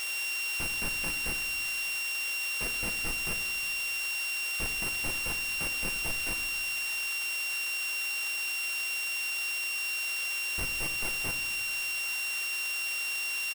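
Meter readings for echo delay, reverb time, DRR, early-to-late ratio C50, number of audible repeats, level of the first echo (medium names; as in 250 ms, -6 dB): 78 ms, 1.1 s, 6.5 dB, 11.0 dB, 1, -16.5 dB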